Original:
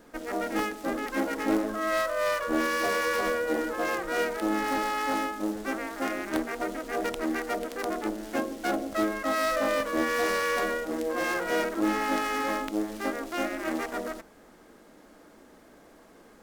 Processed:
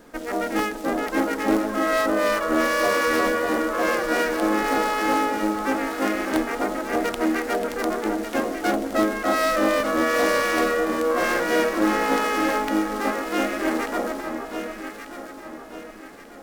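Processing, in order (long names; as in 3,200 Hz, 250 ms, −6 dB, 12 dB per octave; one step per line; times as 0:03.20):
delay that swaps between a low-pass and a high-pass 595 ms, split 1,300 Hz, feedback 63%, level −4.5 dB
level +5 dB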